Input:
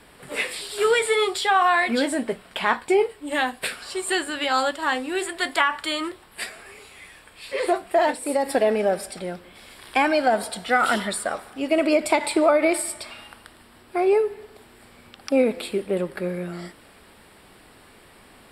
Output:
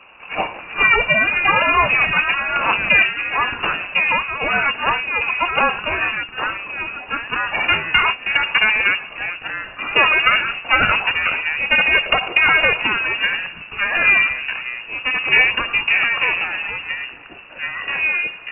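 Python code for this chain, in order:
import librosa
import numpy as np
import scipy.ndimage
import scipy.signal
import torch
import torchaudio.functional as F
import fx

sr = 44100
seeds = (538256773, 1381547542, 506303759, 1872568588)

y = fx.lower_of_two(x, sr, delay_ms=0.55)
y = fx.echo_pitch(y, sr, ms=300, semitones=-4, count=2, db_per_echo=-6.0)
y = fx.freq_invert(y, sr, carrier_hz=2800)
y = y * 10.0 ** (7.0 / 20.0)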